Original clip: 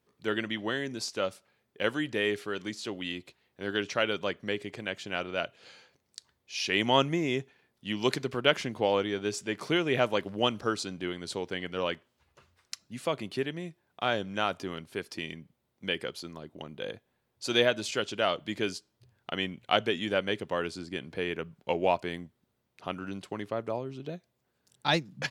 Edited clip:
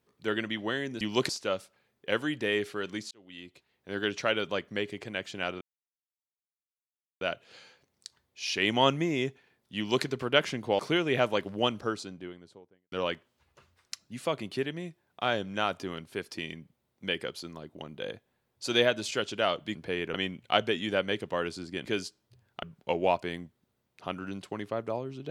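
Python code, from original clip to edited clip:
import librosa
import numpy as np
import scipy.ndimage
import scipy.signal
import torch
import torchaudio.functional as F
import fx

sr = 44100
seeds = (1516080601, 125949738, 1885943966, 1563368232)

y = fx.studio_fade_out(x, sr, start_s=10.32, length_s=1.4)
y = fx.edit(y, sr, fx.fade_in_span(start_s=2.83, length_s=0.87),
    fx.insert_silence(at_s=5.33, length_s=1.6),
    fx.duplicate(start_s=7.89, length_s=0.28, to_s=1.01),
    fx.cut(start_s=8.91, length_s=0.68),
    fx.swap(start_s=18.55, length_s=0.78, other_s=21.04, other_length_s=0.39), tone=tone)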